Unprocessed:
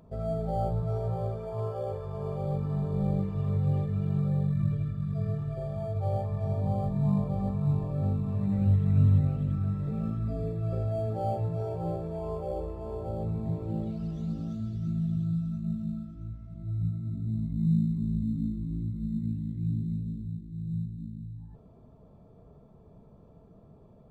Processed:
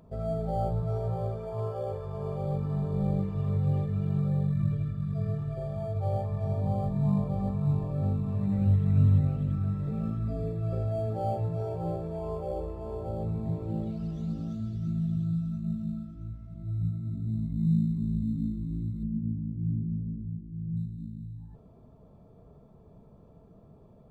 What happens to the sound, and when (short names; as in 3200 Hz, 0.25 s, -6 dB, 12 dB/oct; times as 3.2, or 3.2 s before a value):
19.03–20.77 LPF 1000 Hz 24 dB/oct